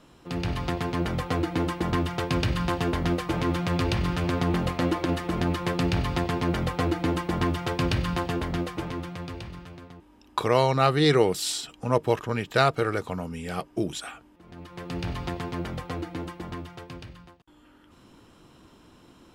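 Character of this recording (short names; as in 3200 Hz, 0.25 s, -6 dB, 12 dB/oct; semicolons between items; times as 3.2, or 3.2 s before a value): noise floor -56 dBFS; spectral tilt -5.0 dB/oct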